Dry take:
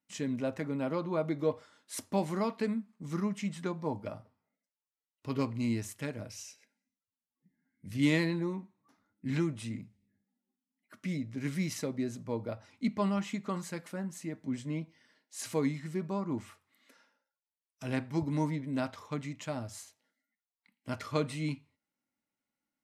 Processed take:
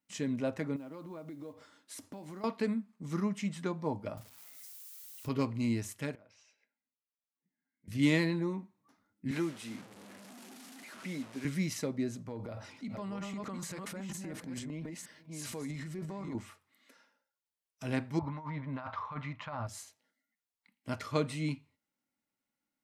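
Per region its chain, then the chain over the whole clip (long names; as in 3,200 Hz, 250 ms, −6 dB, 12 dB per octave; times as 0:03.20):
0:00.76–0:02.44: parametric band 290 Hz +9 dB 0.24 octaves + downward compressor, threshold −43 dBFS + noise that follows the level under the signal 30 dB
0:04.17–0:05.29: spike at every zero crossing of −41.5 dBFS + low-shelf EQ 85 Hz +11.5 dB
0:06.15–0:07.88: high-pass filter 1,000 Hz 6 dB per octave + head-to-tape spacing loss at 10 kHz 34 dB + downward compressor 4 to 1, threshold −57 dBFS
0:09.31–0:11.45: linear delta modulator 64 kbit/s, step −42.5 dBFS + high-pass filter 250 Hz + high-shelf EQ 5,300 Hz −4 dB
0:12.28–0:16.35: delay that plays each chunk backwards 463 ms, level −6 dB + downward compressor 3 to 1, threshold −39 dBFS + transient designer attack −2 dB, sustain +9 dB
0:18.19–0:19.67: drawn EQ curve 110 Hz 0 dB, 360 Hz −11 dB, 1,100 Hz +11 dB, 1,600 Hz +3 dB, 4,200 Hz −7 dB, 8,700 Hz −30 dB + compressor whose output falls as the input rises −39 dBFS
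whole clip: no processing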